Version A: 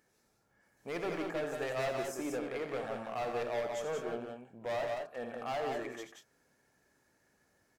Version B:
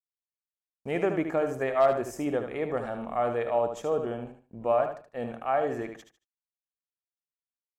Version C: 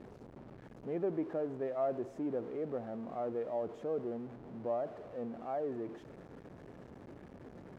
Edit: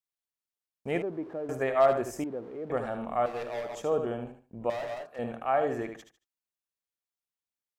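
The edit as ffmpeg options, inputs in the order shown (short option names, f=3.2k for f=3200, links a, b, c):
-filter_complex "[2:a]asplit=2[a][b];[0:a]asplit=2[c][d];[1:a]asplit=5[e][f][g][h][i];[e]atrim=end=1.022[j];[a]atrim=start=1.018:end=1.492[k];[f]atrim=start=1.488:end=2.242[l];[b]atrim=start=2.238:end=2.702[m];[g]atrim=start=2.698:end=3.262[n];[c]atrim=start=3.258:end=3.752[o];[h]atrim=start=3.748:end=4.702[p];[d]atrim=start=4.698:end=5.192[q];[i]atrim=start=5.188[r];[j][k]acrossfade=d=0.004:c1=hsin:c2=hsin[s];[s][l]acrossfade=d=0.004:c1=hsin:c2=hsin[t];[t][m]acrossfade=d=0.004:c1=hsin:c2=hsin[u];[u][n]acrossfade=d=0.004:c1=hsin:c2=hsin[v];[v][o]acrossfade=d=0.004:c1=hsin:c2=hsin[w];[w][p]acrossfade=d=0.004:c1=hsin:c2=hsin[x];[x][q]acrossfade=d=0.004:c1=hsin:c2=hsin[y];[y][r]acrossfade=d=0.004:c1=hsin:c2=hsin"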